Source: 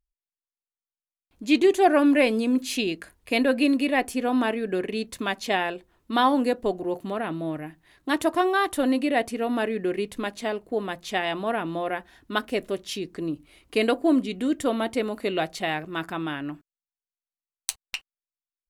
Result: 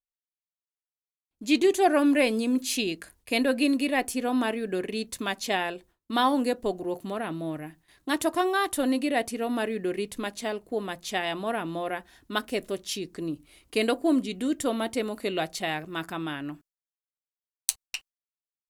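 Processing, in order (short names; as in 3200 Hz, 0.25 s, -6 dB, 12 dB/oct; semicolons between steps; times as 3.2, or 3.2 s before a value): tone controls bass +1 dB, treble +7 dB; gate with hold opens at -46 dBFS; gain -3 dB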